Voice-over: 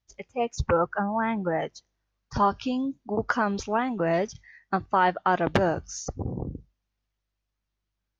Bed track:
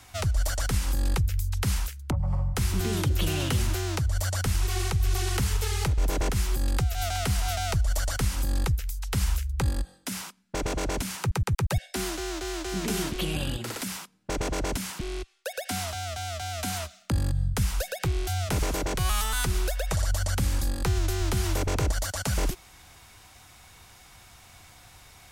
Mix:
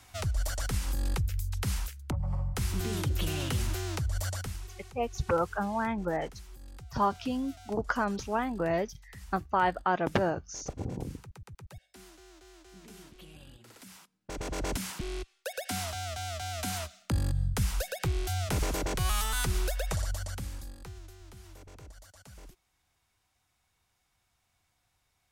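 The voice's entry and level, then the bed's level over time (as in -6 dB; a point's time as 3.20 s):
4.60 s, -4.5 dB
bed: 4.30 s -5 dB
4.80 s -22 dB
13.58 s -22 dB
14.70 s -3 dB
19.85 s -3 dB
21.18 s -24 dB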